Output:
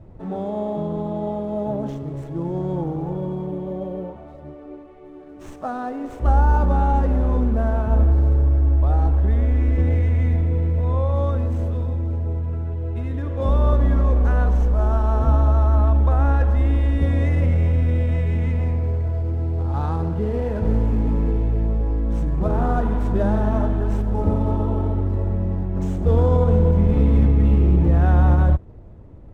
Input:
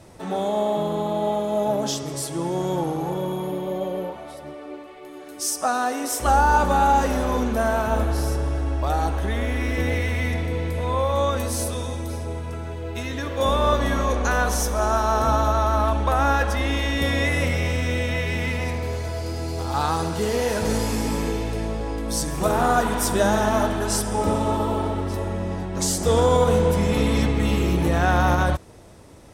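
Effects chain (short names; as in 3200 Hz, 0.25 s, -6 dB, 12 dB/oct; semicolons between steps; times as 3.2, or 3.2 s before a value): median filter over 9 samples; tilt -4 dB/oct; gain -7 dB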